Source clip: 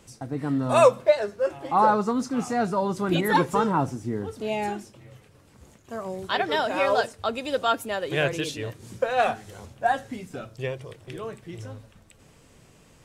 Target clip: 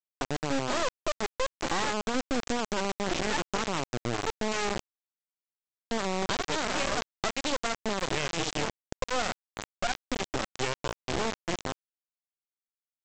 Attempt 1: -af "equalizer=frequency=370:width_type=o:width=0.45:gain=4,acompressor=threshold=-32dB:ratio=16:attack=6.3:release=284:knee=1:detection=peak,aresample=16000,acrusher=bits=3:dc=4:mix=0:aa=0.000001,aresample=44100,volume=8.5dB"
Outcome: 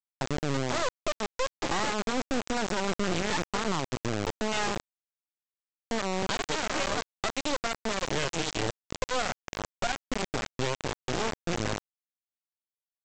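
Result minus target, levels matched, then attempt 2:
125 Hz band +3.0 dB
-af "highpass=170,equalizer=frequency=370:width_type=o:width=0.45:gain=4,acompressor=threshold=-32dB:ratio=16:attack=6.3:release=284:knee=1:detection=peak,aresample=16000,acrusher=bits=3:dc=4:mix=0:aa=0.000001,aresample=44100,volume=8.5dB"

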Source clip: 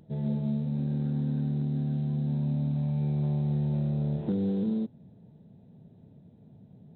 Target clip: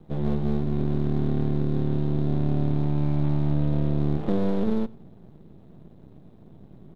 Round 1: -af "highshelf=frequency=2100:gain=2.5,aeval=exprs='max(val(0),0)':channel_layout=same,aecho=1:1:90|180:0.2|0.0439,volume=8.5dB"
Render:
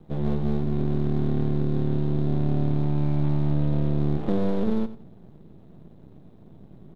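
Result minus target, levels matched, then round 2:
echo-to-direct +8 dB
-af "highshelf=frequency=2100:gain=2.5,aeval=exprs='max(val(0),0)':channel_layout=same,aecho=1:1:90|180:0.0794|0.0175,volume=8.5dB"

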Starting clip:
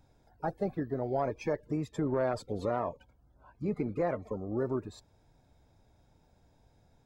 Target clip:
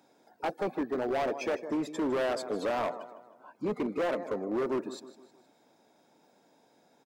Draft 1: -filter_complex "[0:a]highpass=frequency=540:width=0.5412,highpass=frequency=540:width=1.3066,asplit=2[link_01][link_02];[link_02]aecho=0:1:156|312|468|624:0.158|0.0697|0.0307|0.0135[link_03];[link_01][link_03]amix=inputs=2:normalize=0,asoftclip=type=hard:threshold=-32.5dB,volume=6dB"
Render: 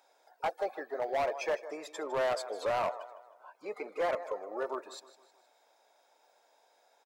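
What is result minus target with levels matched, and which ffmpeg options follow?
250 Hz band −12.5 dB
-filter_complex "[0:a]highpass=frequency=230:width=0.5412,highpass=frequency=230:width=1.3066,asplit=2[link_01][link_02];[link_02]aecho=0:1:156|312|468|624:0.158|0.0697|0.0307|0.0135[link_03];[link_01][link_03]amix=inputs=2:normalize=0,asoftclip=type=hard:threshold=-32.5dB,volume=6dB"

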